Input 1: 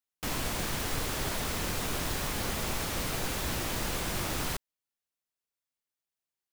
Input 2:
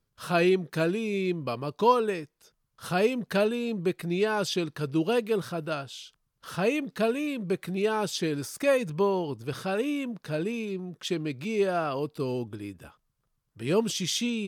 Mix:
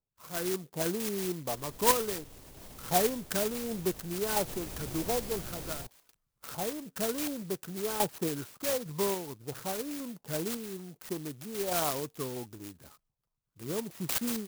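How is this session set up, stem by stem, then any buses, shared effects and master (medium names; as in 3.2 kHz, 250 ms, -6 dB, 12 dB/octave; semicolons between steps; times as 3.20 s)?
4.12 s -23 dB -> 4.73 s -11 dB, 1.30 s, no send, peaking EQ 1.5 kHz -8.5 dB 1.2 oct; peak limiter -25.5 dBFS, peak gain reduction 5.5 dB
-15.0 dB, 0.00 s, no send, step-sequenced low-pass 11 Hz 820–3500 Hz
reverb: none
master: level rider gain up to 11 dB; random-step tremolo; sampling jitter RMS 0.14 ms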